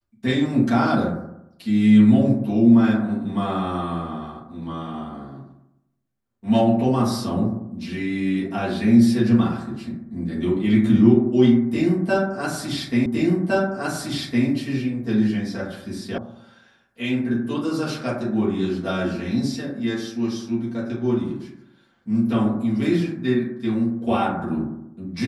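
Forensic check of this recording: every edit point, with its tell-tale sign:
13.06 s: repeat of the last 1.41 s
16.18 s: sound stops dead

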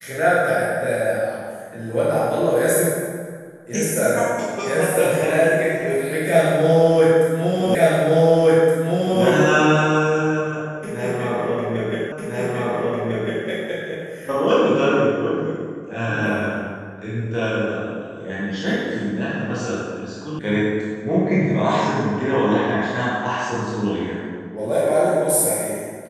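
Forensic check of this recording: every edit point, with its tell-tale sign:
7.75 s: repeat of the last 1.47 s
12.12 s: repeat of the last 1.35 s
20.39 s: sound stops dead

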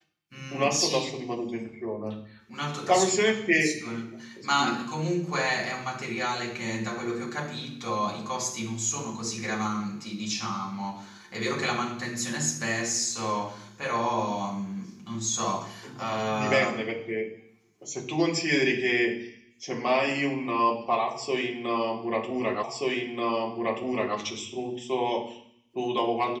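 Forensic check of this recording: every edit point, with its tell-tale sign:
22.63 s: repeat of the last 1.53 s

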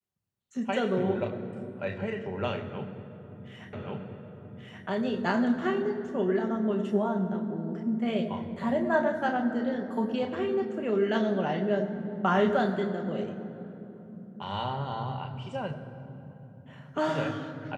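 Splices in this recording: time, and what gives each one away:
3.73 s: repeat of the last 1.13 s

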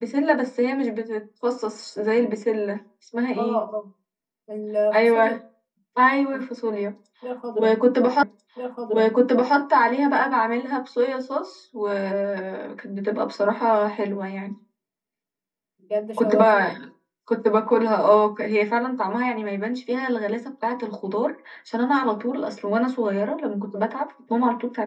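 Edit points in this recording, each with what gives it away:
8.23 s: repeat of the last 1.34 s

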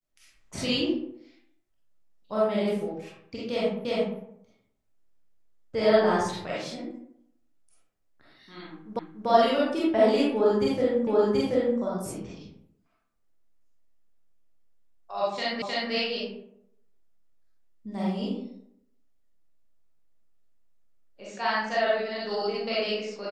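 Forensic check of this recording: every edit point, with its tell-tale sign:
3.85 s: repeat of the last 0.35 s
8.99 s: repeat of the last 0.29 s
11.07 s: repeat of the last 0.73 s
15.62 s: repeat of the last 0.31 s

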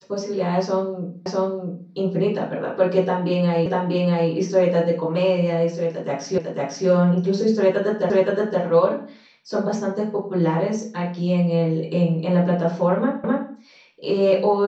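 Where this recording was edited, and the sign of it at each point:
1.26 s: repeat of the last 0.65 s
3.66 s: repeat of the last 0.64 s
6.38 s: repeat of the last 0.5 s
8.10 s: repeat of the last 0.52 s
13.24 s: repeat of the last 0.26 s

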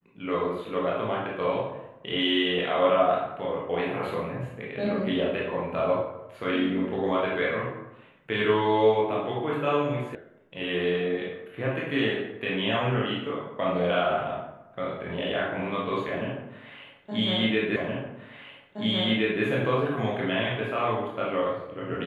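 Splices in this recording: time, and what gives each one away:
10.15 s: sound stops dead
17.76 s: repeat of the last 1.67 s

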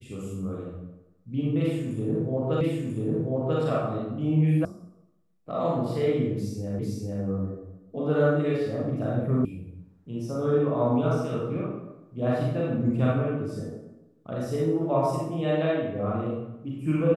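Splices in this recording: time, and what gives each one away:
2.61 s: repeat of the last 0.99 s
4.65 s: sound stops dead
6.79 s: repeat of the last 0.45 s
9.45 s: sound stops dead

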